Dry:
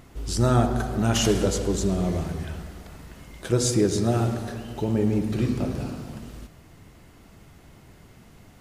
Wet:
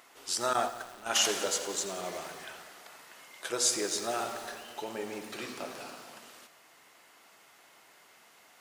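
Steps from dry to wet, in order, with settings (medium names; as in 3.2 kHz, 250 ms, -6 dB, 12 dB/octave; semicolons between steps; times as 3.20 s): high-pass 790 Hz 12 dB/octave; 0.53–1.25 s: gate -31 dBFS, range -14 dB; bit-crushed delay 89 ms, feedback 80%, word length 7-bit, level -14 dB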